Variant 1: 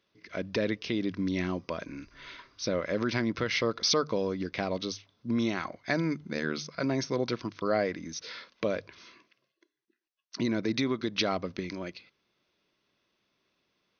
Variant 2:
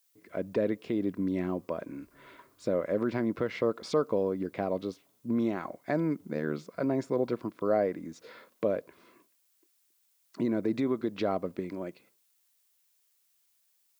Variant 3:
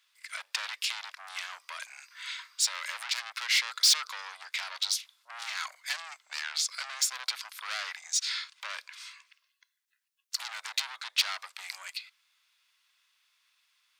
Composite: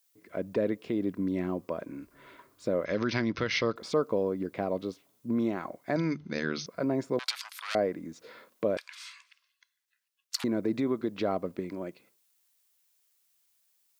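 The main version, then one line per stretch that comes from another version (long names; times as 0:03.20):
2
0:02.85–0:03.76: punch in from 1
0:05.96–0:06.66: punch in from 1
0:07.19–0:07.75: punch in from 3
0:08.77–0:10.44: punch in from 3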